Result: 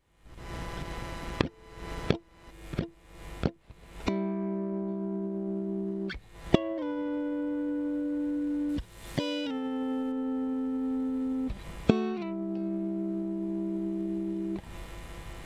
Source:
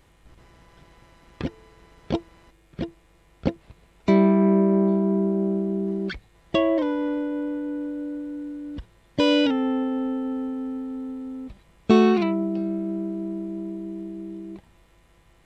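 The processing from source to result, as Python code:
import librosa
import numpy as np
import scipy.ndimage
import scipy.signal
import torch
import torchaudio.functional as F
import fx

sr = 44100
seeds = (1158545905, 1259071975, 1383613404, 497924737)

p1 = fx.recorder_agc(x, sr, target_db=-11.5, rise_db_per_s=56.0, max_gain_db=30)
p2 = fx.backlash(p1, sr, play_db=-18.5)
p3 = p1 + (p2 * 10.0 ** (-12.0 / 20.0))
p4 = fx.high_shelf(p3, sr, hz=3900.0, db=10.0, at=(8.69, 10.12))
y = p4 * 10.0 ** (-16.0 / 20.0)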